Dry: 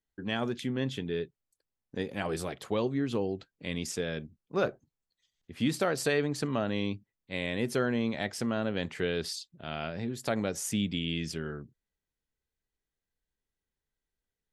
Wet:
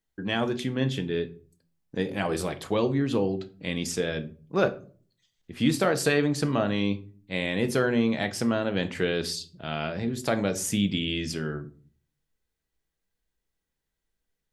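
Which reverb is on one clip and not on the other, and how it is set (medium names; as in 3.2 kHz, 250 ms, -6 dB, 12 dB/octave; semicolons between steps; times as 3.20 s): simulated room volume 310 m³, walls furnished, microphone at 0.64 m; trim +4.5 dB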